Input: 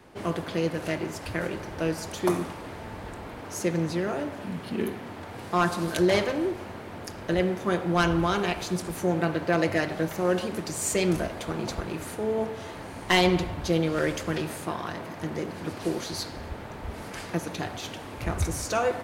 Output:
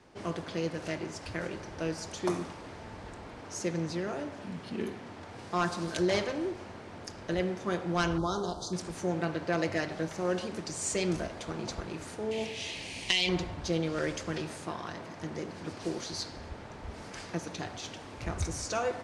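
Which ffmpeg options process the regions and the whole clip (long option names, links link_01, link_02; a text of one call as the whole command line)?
ffmpeg -i in.wav -filter_complex "[0:a]asettb=1/sr,asplit=3[link_01][link_02][link_03];[link_01]atrim=end=8.184[link_04];[link_02]atrim=start=8.18:end=8.73,asetpts=PTS-STARTPTS,afade=type=in:duration=0.004:curve=qsin,afade=type=out:start_time=0.546:duration=0.004:curve=qsin,asuperstop=centerf=2200:order=8:qfactor=1,asplit=2[link_05][link_06];[link_06]adelay=32,volume=-13dB[link_07];[link_05][link_07]amix=inputs=2:normalize=0,atrim=end_sample=24255[link_08];[link_03]atrim=start=8.726[link_09];[link_04][link_08]acrossfade=duration=0.004:curve1=hsin:curve2=qsin[link_10];[link_10][link_09]acrossfade=duration=0.004:curve1=qsin:curve2=hsin,asettb=1/sr,asplit=3[link_11][link_12][link_13];[link_11]atrim=end=12.314[link_14];[link_12]atrim=start=12.31:end=13.29,asetpts=PTS-STARTPTS,afade=type=in:duration=0.004:curve=qsin,afade=type=out:start_time=0.976:duration=0.004:curve=qsin,highshelf=frequency=1900:width_type=q:width=3:gain=10.5,acompressor=threshold=-17dB:ratio=10:attack=3.2:release=140:knee=1:detection=peak[link_15];[link_13]atrim=start=13.286[link_16];[link_14][link_15]acrossfade=duration=0.004:curve1=hsin:curve2=qsin[link_17];[link_17][link_16]acrossfade=duration=0.004:curve1=qsin:curve2=hsin,lowpass=frequency=9200:width=0.5412,lowpass=frequency=9200:width=1.3066,equalizer=frequency=5500:width_type=o:width=0.76:gain=5,volume=-6dB" out.wav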